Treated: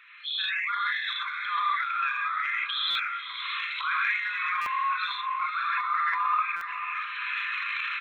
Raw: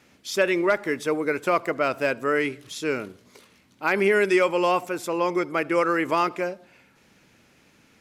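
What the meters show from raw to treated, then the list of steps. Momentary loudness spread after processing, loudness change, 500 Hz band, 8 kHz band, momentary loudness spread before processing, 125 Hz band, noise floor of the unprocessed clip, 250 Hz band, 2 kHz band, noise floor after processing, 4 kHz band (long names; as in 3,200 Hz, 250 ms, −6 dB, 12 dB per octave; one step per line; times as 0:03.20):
6 LU, −4.0 dB, below −40 dB, below −20 dB, 10 LU, below −35 dB, −59 dBFS, below −40 dB, +0.5 dB, −37 dBFS, +7.0 dB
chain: spectral envelope exaggerated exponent 2
camcorder AGC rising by 34 dB per second
reverb reduction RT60 1.8 s
reverb whose tail is shaped and stops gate 160 ms rising, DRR −8 dB
brick-wall band-pass 1,000–4,200 Hz
double-tracking delay 44 ms −11 dB
transient designer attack −4 dB, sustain +12 dB
downward compressor 2.5 to 1, threshold −29 dBFS, peak gain reduction 13 dB
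feedback delay with all-pass diffusion 553 ms, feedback 43%, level −9 dB
buffer that repeats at 0:02.90/0:04.61/0:06.56, samples 256, times 8
one half of a high-frequency compander encoder only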